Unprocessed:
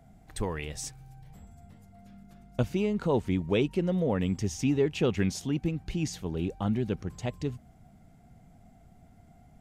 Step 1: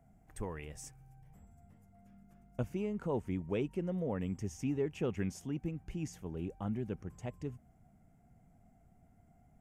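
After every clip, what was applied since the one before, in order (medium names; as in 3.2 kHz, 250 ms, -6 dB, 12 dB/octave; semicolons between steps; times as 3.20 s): peaking EQ 4 kHz -14.5 dB 0.66 oct; trim -8.5 dB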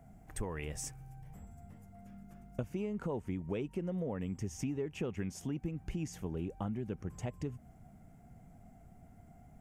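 compression 5:1, threshold -42 dBFS, peak gain reduction 12 dB; trim +7.5 dB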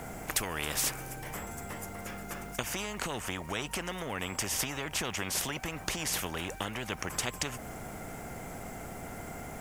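spectrum-flattening compressor 4:1; trim +8 dB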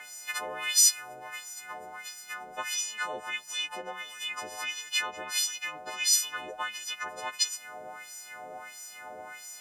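partials quantised in pitch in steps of 3 st; LFO band-pass sine 1.5 Hz 560–6000 Hz; trim +4.5 dB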